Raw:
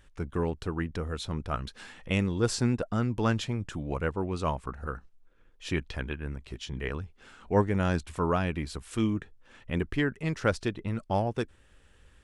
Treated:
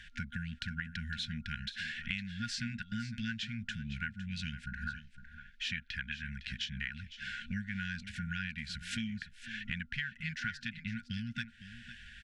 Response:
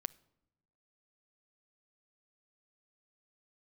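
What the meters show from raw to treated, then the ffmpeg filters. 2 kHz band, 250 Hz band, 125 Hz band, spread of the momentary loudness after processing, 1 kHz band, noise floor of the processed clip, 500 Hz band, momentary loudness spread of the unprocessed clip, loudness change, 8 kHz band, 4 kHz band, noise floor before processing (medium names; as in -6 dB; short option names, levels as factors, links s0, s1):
0.0 dB, -10.5 dB, -10.5 dB, 6 LU, -15.5 dB, -58 dBFS, under -40 dB, 12 LU, -8.5 dB, -8.0 dB, +0.5 dB, -60 dBFS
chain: -filter_complex "[0:a]afftfilt=real='re*(1-between(b*sr/4096,240,1400))':imag='im*(1-between(b*sr/4096,240,1400))':win_size=4096:overlap=0.75,acrossover=split=290 5200:gain=0.2 1 0.0891[s0][s1][s2];[s0][s1][s2]amix=inputs=3:normalize=0,acompressor=threshold=0.00282:ratio=6,aecho=1:1:508:0.211,volume=5.31"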